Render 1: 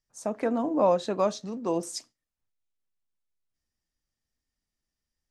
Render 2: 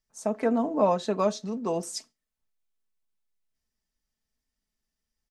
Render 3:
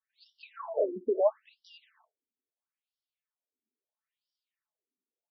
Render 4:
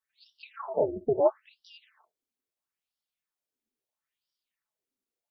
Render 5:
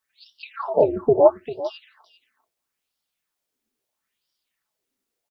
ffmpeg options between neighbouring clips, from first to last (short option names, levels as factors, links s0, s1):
-af "aecho=1:1:4.6:0.47"
-af "afftfilt=real='re*between(b*sr/1024,300*pow(4100/300,0.5+0.5*sin(2*PI*0.75*pts/sr))/1.41,300*pow(4100/300,0.5+0.5*sin(2*PI*0.75*pts/sr))*1.41)':imag='im*between(b*sr/1024,300*pow(4100/300,0.5+0.5*sin(2*PI*0.75*pts/sr))/1.41,300*pow(4100/300,0.5+0.5*sin(2*PI*0.75*pts/sr))*1.41)':win_size=1024:overlap=0.75,volume=1.26"
-af "tremolo=f=270:d=0.519,volume=1.68"
-af "aecho=1:1:397:0.188,volume=2.82"